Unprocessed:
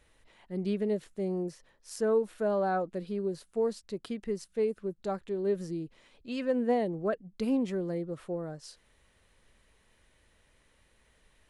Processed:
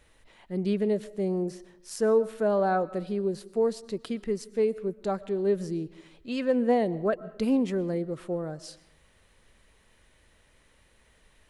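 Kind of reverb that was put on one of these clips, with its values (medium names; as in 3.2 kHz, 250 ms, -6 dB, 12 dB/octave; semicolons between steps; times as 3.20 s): algorithmic reverb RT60 0.9 s, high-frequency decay 0.55×, pre-delay 80 ms, DRR 19 dB; trim +4 dB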